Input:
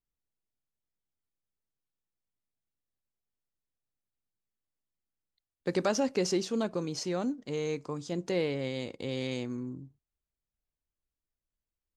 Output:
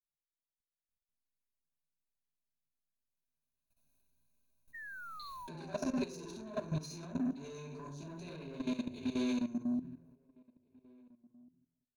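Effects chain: Doppler pass-by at 5.25, 12 m/s, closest 1.8 m; high shelf 9900 Hz +10.5 dB; notch 1800 Hz, Q 5.4; on a send: flutter echo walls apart 11.9 m, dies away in 0.34 s; on the sum: shoebox room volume 520 m³, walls furnished, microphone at 8.5 m; limiter -41.5 dBFS, peak gain reduction 27.5 dB; sample leveller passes 2; ripple EQ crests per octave 1.5, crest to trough 13 dB; painted sound fall, 4.73–6.52, 350–1900 Hz -55 dBFS; level quantiser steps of 14 dB; outdoor echo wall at 290 m, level -26 dB; gain +9.5 dB

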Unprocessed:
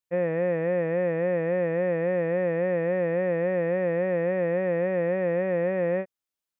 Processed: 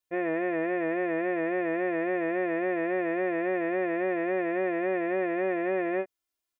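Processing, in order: comb 2.9 ms, depth 86%

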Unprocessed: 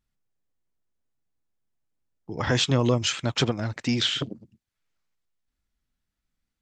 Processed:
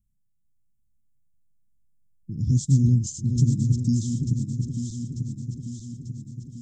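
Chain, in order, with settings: regenerating reverse delay 0.446 s, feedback 74%, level -5.5 dB; inverse Chebyshev band-stop 720–2300 Hz, stop band 70 dB; low shelf 440 Hz +6 dB; gain +1.5 dB

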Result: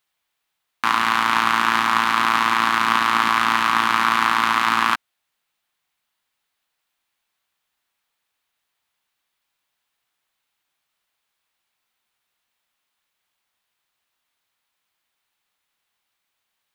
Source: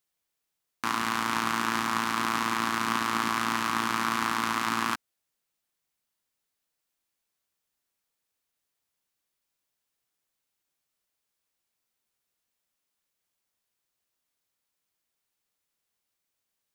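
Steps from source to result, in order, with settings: band shelf 1700 Hz +8 dB 2.8 oct; gain +2.5 dB

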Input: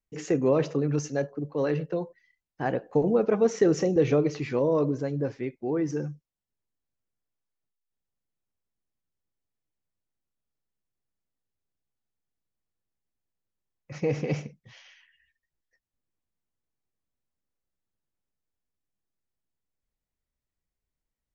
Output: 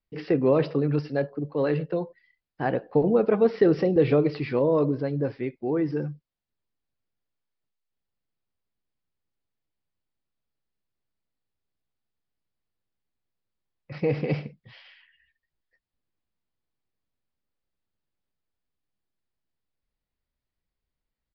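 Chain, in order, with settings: downsampling 11025 Hz; gain +2 dB

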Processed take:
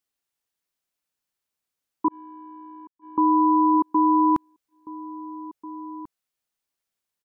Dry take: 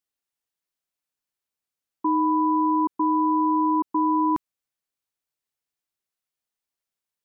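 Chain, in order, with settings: 2.08–3.18 gate -17 dBFS, range -40 dB; outdoor echo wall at 290 m, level -16 dB; gain +3 dB

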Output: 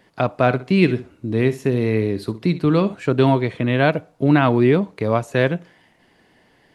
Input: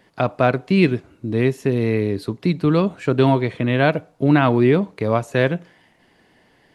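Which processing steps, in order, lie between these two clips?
0.4–2.95 flutter echo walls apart 10.9 m, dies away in 0.26 s

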